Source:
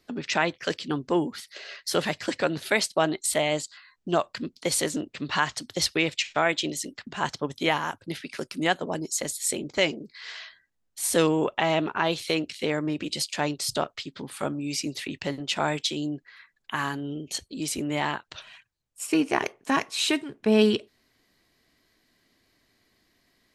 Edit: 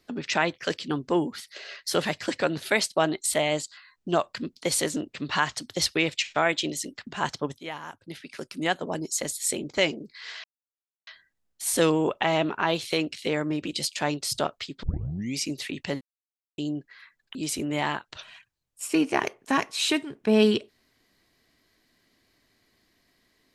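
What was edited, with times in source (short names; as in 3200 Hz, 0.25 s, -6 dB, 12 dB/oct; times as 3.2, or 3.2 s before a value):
7.58–9.03 fade in, from -15 dB
10.44 insert silence 0.63 s
14.2 tape start 0.53 s
15.38–15.95 mute
16.72–17.54 cut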